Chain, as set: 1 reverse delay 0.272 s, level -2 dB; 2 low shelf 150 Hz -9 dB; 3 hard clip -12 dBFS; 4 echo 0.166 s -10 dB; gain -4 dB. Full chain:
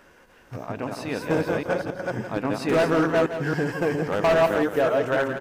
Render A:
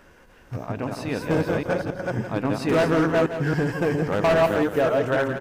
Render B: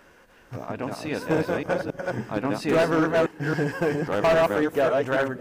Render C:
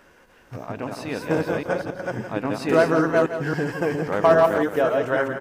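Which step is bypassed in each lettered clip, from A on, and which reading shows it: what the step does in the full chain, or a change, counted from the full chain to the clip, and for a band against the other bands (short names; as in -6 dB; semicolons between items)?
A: 2, 125 Hz band +4.0 dB; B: 4, crest factor change -2.0 dB; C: 3, distortion -11 dB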